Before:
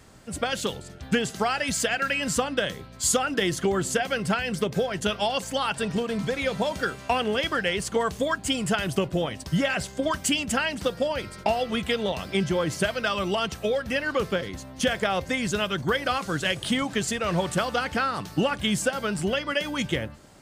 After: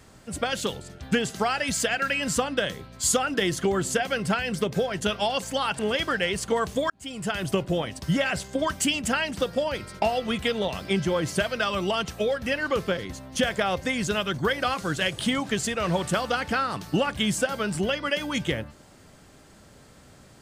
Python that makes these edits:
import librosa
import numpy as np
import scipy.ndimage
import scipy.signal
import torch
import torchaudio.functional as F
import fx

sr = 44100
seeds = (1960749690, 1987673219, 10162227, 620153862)

y = fx.edit(x, sr, fx.cut(start_s=5.79, length_s=1.44),
    fx.fade_in_span(start_s=8.34, length_s=0.61), tone=tone)